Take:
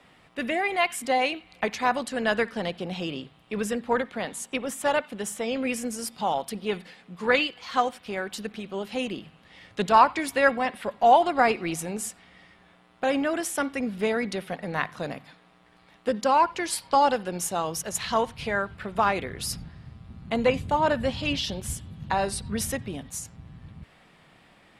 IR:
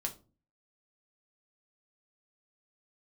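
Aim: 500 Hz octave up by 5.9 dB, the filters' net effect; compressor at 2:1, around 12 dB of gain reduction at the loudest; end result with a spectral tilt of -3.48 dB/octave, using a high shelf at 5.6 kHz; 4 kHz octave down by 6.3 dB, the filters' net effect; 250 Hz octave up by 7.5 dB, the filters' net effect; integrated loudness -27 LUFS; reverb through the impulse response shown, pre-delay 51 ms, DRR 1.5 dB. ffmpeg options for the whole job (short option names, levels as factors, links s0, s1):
-filter_complex "[0:a]equalizer=f=250:t=o:g=7.5,equalizer=f=500:t=o:g=5.5,equalizer=f=4000:t=o:g=-6.5,highshelf=f=5600:g=-7.5,acompressor=threshold=0.0224:ratio=2,asplit=2[s0][s1];[1:a]atrim=start_sample=2205,adelay=51[s2];[s1][s2]afir=irnorm=-1:irlink=0,volume=0.794[s3];[s0][s3]amix=inputs=2:normalize=0,volume=1.33"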